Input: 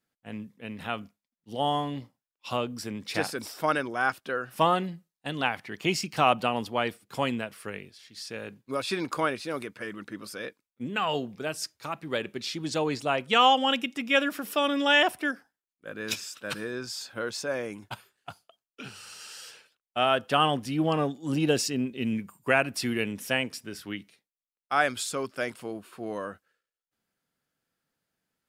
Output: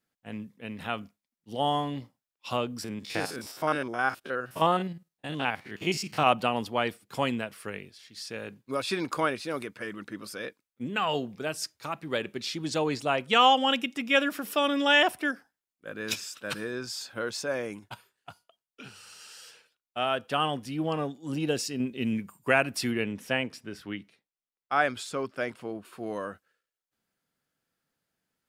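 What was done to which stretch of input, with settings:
0:02.84–0:06.27: spectrum averaged block by block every 50 ms
0:17.79–0:21.80: tuned comb filter 480 Hz, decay 0.3 s, mix 40%
0:22.91–0:25.85: high-shelf EQ 5,100 Hz −12 dB

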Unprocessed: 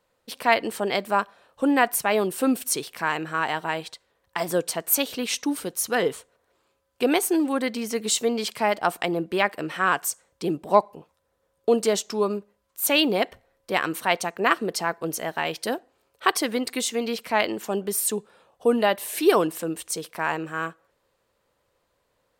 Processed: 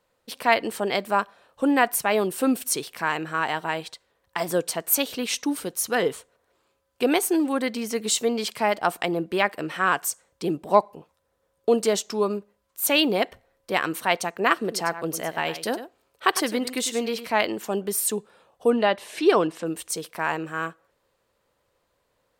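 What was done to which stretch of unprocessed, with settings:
0:14.54–0:17.35: single-tap delay 102 ms −12 dB
0:18.70–0:19.66: low-pass filter 5,300 Hz

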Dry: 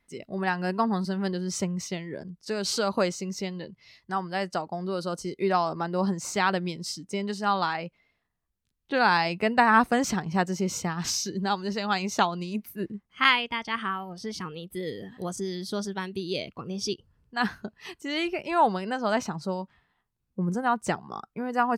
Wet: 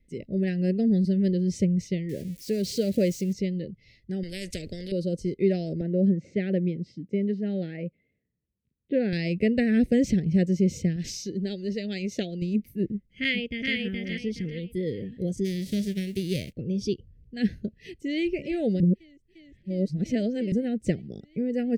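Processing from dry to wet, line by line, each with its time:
0:02.09–0:03.33: spike at every zero crossing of −28 dBFS
0:04.23–0:04.92: every bin compressed towards the loudest bin 4 to 1
0:05.81–0:09.13: band-pass filter 130–2,000 Hz
0:10.96–0:12.42: parametric band 79 Hz −10 dB 2.9 octaves
0:12.92–0:13.75: delay throw 420 ms, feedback 30%, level −2 dB
0:15.44–0:16.52: spectral envelope flattened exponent 0.3
0:17.80–0:18.21: delay throw 350 ms, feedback 80%, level −16 dB
0:18.80–0:20.52: reverse
whole clip: Chebyshev band-stop filter 540–2,000 Hz, order 3; spectral tilt −3 dB per octave

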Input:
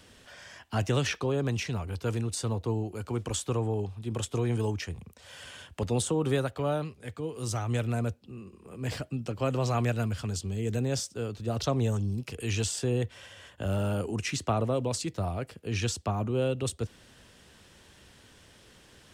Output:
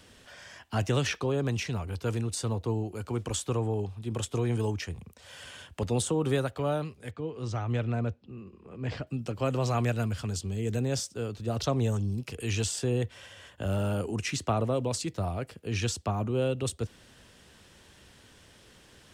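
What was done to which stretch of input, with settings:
0:07.11–0:09.07: high-frequency loss of the air 160 metres

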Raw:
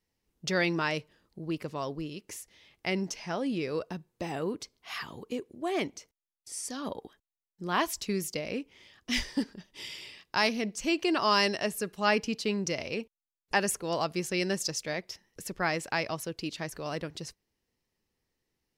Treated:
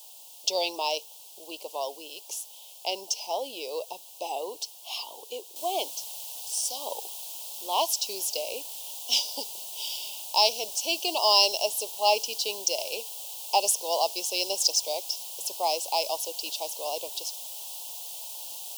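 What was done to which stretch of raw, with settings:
0:05.56: noise floor change −55 dB −46 dB
whole clip: high-pass filter 570 Hz 24 dB per octave; dynamic equaliser 5,400 Hz, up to +5 dB, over −48 dBFS, Q 3.4; elliptic band-stop filter 910–2,900 Hz, stop band 80 dB; level +7.5 dB

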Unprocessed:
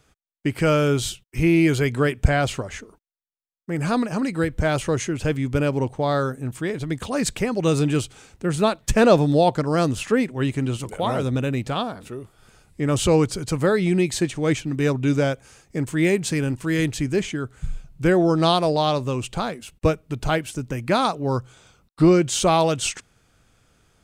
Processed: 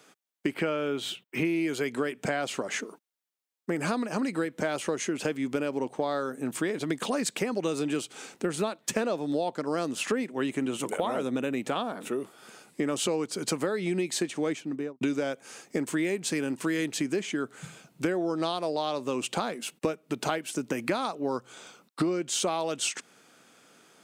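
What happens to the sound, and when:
0:00.54–0:01.45: flat-topped bell 7,700 Hz −11.5 dB
0:10.50–0:12.19: parametric band 4,700 Hz −7.5 dB 0.49 octaves
0:14.37–0:15.01: fade out and dull
whole clip: high-pass filter 210 Hz 24 dB per octave; downward compressor 10 to 1, threshold −31 dBFS; level +5.5 dB

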